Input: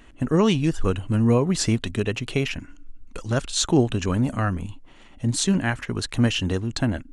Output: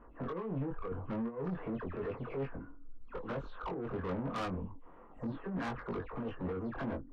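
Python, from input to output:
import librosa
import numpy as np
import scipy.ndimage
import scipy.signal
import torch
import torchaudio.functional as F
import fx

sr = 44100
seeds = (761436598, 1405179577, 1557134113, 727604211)

y = fx.spec_delay(x, sr, highs='early', ms=197)
y = fx.peak_eq(y, sr, hz=480.0, db=11.0, octaves=0.44)
y = fx.over_compress(y, sr, threshold_db=-22.0, ratio=-1.0)
y = fx.ladder_lowpass(y, sr, hz=1300.0, resonance_pct=55)
y = 10.0 ** (-33.5 / 20.0) * np.tanh(y / 10.0 ** (-33.5 / 20.0))
y = fx.doubler(y, sr, ms=22.0, db=-4.0)
y = F.gain(torch.from_numpy(y), -1.5).numpy()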